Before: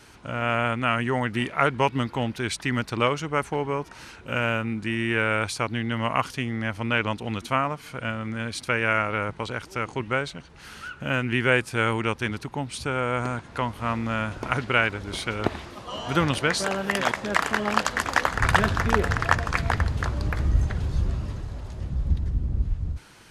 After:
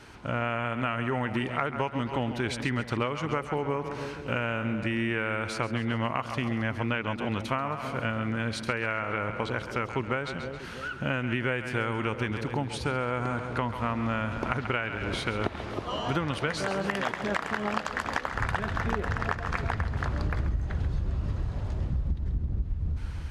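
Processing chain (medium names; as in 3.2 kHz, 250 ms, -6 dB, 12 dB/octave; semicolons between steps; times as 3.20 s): two-band feedback delay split 580 Hz, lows 320 ms, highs 135 ms, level -11.5 dB; compression 10:1, threshold -27 dBFS, peak gain reduction 15 dB; treble shelf 5.3 kHz -11.5 dB; trim +2.5 dB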